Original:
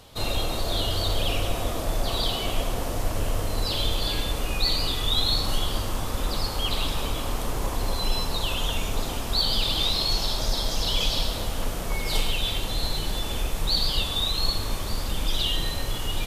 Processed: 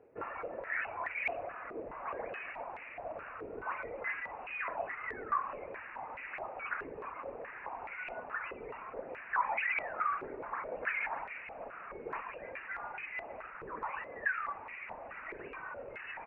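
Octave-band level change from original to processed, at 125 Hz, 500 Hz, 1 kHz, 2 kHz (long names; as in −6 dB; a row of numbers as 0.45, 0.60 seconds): −31.5, −9.5, −4.0, −0.5 decibels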